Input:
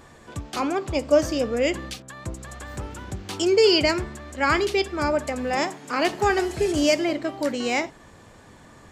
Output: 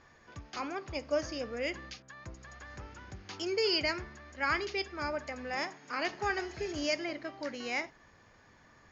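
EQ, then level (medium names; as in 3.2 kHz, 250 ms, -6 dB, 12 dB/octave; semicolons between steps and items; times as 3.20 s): rippled Chebyshev low-pass 6.8 kHz, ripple 6 dB; peaking EQ 260 Hz -2.5 dB 2.6 oct; -6.5 dB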